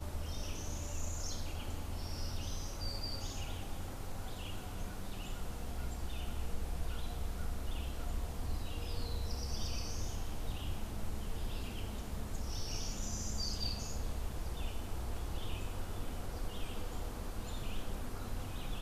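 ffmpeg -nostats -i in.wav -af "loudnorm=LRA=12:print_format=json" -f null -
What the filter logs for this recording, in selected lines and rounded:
"input_i" : "-42.7",
"input_tp" : "-24.7",
"input_lra" : "3.1",
"input_thresh" : "-52.7",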